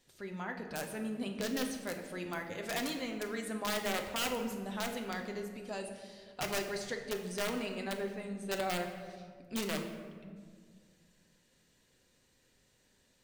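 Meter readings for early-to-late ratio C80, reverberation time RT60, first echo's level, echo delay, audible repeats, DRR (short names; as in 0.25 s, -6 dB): 8.5 dB, 1.8 s, none, none, none, 3.0 dB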